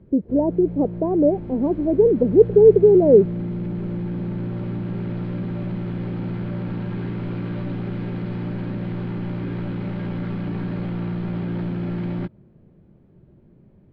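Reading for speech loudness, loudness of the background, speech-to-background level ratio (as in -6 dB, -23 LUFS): -16.5 LUFS, -28.5 LUFS, 12.0 dB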